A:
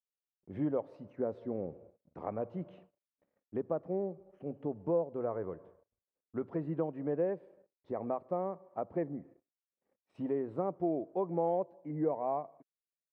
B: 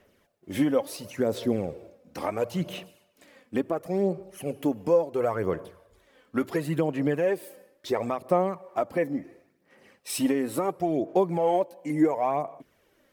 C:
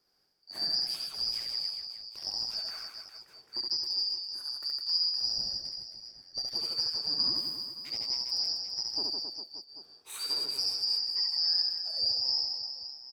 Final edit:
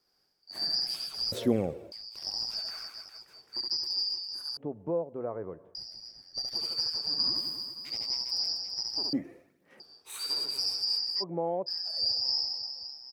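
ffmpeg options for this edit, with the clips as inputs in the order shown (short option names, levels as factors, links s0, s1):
-filter_complex "[1:a]asplit=2[s0][s1];[0:a]asplit=2[s2][s3];[2:a]asplit=5[s4][s5][s6][s7][s8];[s4]atrim=end=1.322[s9];[s0]atrim=start=1.318:end=1.922[s10];[s5]atrim=start=1.918:end=4.572[s11];[s2]atrim=start=4.568:end=5.752[s12];[s6]atrim=start=5.748:end=9.132[s13];[s1]atrim=start=9.128:end=9.802[s14];[s7]atrim=start=9.798:end=11.24[s15];[s3]atrim=start=11.2:end=11.7[s16];[s8]atrim=start=11.66[s17];[s9][s10]acrossfade=d=0.004:c1=hsin:c2=hsin[s18];[s18][s11]acrossfade=d=0.004:c1=hsin:c2=hsin[s19];[s19][s12]acrossfade=d=0.004:c1=hsin:c2=hsin[s20];[s20][s13]acrossfade=d=0.004:c1=hsin:c2=hsin[s21];[s21][s14]acrossfade=d=0.004:c1=hsin:c2=hsin[s22];[s22][s15]acrossfade=d=0.004:c1=hsin:c2=hsin[s23];[s23][s16]acrossfade=d=0.04:c1=tri:c2=tri[s24];[s24][s17]acrossfade=d=0.04:c1=tri:c2=tri"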